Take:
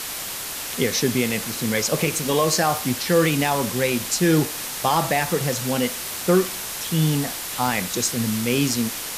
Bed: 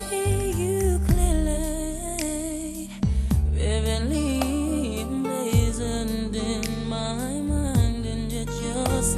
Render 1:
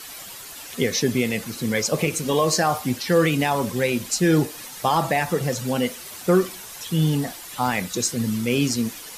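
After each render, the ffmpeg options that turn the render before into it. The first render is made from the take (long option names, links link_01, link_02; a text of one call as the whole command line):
ffmpeg -i in.wav -af "afftdn=noise_reduction=11:noise_floor=-31" out.wav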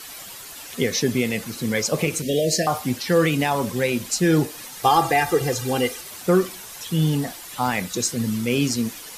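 ffmpeg -i in.wav -filter_complex "[0:a]asettb=1/sr,asplit=3[link_01][link_02][link_03];[link_01]atrim=end=2.224[link_04];[link_02]atrim=start=2.22:end=2.67,asetpts=PTS-STARTPTS,afade=type=in:duration=0.004:curve=qsin,afade=type=out:start_time=0.446:duration=0.004:curve=qsin,asuperstop=centerf=1100:order=20:qfactor=1.1[link_05];[link_03]atrim=start=2.666[link_06];[link_04][link_05]acrossfade=duration=0.004:curve1=hsin:curve2=qsin[link_07];[link_07][link_06]acrossfade=duration=0.004:curve1=qsin:curve2=hsin,asettb=1/sr,asplit=3[link_08][link_09][link_10];[link_08]atrim=end=4.834[link_11];[link_09]atrim=start=4.83:end=6.01,asetpts=PTS-STARTPTS,afade=type=in:duration=0.004:curve=qsin,afade=type=out:start_time=1.176:duration=0.004:curve=qsin,aecho=1:1:2.5:0.94,atrim=end_sample=52038[link_12];[link_10]atrim=start=6.006[link_13];[link_11][link_12]acrossfade=duration=0.004:curve1=hsin:curve2=qsin[link_14];[link_14][link_13]acrossfade=duration=0.004:curve1=qsin:curve2=hsin" out.wav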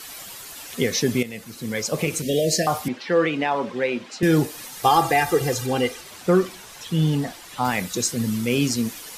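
ffmpeg -i in.wav -filter_complex "[0:a]asettb=1/sr,asplit=3[link_01][link_02][link_03];[link_01]atrim=end=2.884[link_04];[link_02]atrim=start=2.88:end=4.23,asetpts=PTS-STARTPTS,afade=type=in:duration=0.004:curve=qsin,afade=type=out:start_time=1.346:duration=0.004:curve=qsin,highpass=270,lowpass=2900[link_05];[link_03]atrim=start=4.226[link_06];[link_04][link_05]acrossfade=duration=0.004:curve1=hsin:curve2=qsin[link_07];[link_07][link_06]acrossfade=duration=0.004:curve1=qsin:curve2=hsin,asettb=1/sr,asplit=3[link_08][link_09][link_10];[link_08]atrim=end=5.664[link_11];[link_09]atrim=start=5.66:end=7.65,asetpts=PTS-STARTPTS,afade=type=in:duration=0.004:curve=qsin,afade=type=out:start_time=1.986:duration=0.004:curve=qsin,highshelf=frequency=8500:gain=-11.5[link_12];[link_10]atrim=start=7.646[link_13];[link_11][link_12]acrossfade=duration=0.004:curve1=hsin:curve2=qsin[link_14];[link_14][link_13]acrossfade=duration=0.004:curve1=qsin:curve2=hsin,asplit=2[link_15][link_16];[link_15]atrim=end=1.23,asetpts=PTS-STARTPTS,afade=type=out:start_time=1.226:duration=0.004:curve=hsin:silence=0.251189[link_17];[link_16]atrim=start=1.23,asetpts=PTS-STARTPTS,afade=type=in:duration=1.02:silence=0.251189[link_18];[link_17][link_18]concat=n=2:v=0:a=1" out.wav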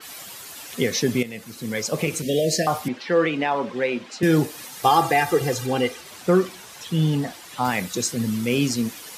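ffmpeg -i in.wav -af "highpass=81,adynamicequalizer=threshold=0.0112:dfrequency=4700:dqfactor=0.7:tfrequency=4700:tqfactor=0.7:attack=5:release=100:ratio=0.375:range=1.5:mode=cutabove:tftype=highshelf" out.wav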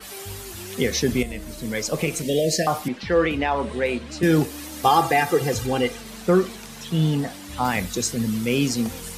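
ffmpeg -i in.wav -i bed.wav -filter_complex "[1:a]volume=-14.5dB[link_01];[0:a][link_01]amix=inputs=2:normalize=0" out.wav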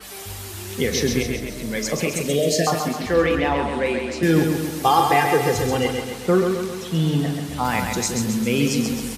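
ffmpeg -i in.wav -filter_complex "[0:a]asplit=2[link_01][link_02];[link_02]adelay=42,volume=-13dB[link_03];[link_01][link_03]amix=inputs=2:normalize=0,aecho=1:1:133|266|399|532|665|798|931:0.562|0.309|0.17|0.0936|0.0515|0.0283|0.0156" out.wav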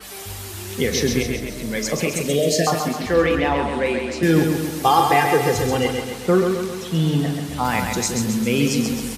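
ffmpeg -i in.wav -af "volume=1dB" out.wav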